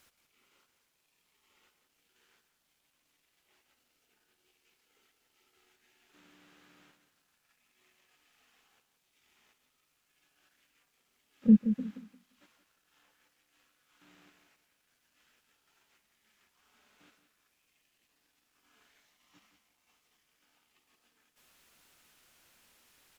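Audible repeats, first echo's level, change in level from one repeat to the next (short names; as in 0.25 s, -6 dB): 2, -10.0 dB, -13.5 dB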